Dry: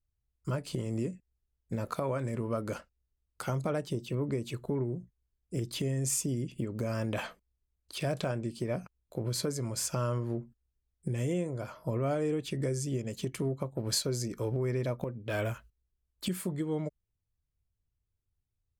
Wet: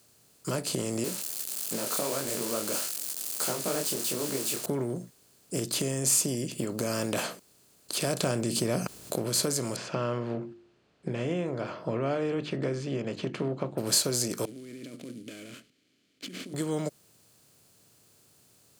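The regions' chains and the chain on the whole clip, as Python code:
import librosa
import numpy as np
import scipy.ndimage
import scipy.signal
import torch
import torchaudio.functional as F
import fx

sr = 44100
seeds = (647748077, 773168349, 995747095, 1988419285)

y = fx.chain(x, sr, fx.crossing_spikes(level_db=-29.0),
    fx.highpass(hz=240.0, slope=12),
    fx.detune_double(cents=54), at=(1.04, 4.66))
y = fx.chain(y, sr, fx.low_shelf(hz=170.0, db=9.5),
    fx.env_flatten(amount_pct=50), at=(8.22, 9.16))
y = fx.chain(y, sr, fx.lowpass(hz=2800.0, slope=24),
    fx.hum_notches(base_hz=50, count=7), at=(9.76, 13.78))
y = fx.chain(y, sr, fx.over_compress(threshold_db=-38.0, ratio=-1.0),
    fx.sample_hold(seeds[0], rate_hz=9800.0, jitter_pct=20),
    fx.vowel_filter(vowel='i'), at=(14.45, 16.54))
y = fx.bin_compress(y, sr, power=0.6)
y = scipy.signal.sosfilt(scipy.signal.butter(2, 160.0, 'highpass', fs=sr, output='sos'), y)
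y = fx.high_shelf(y, sr, hz=5000.0, db=8.0)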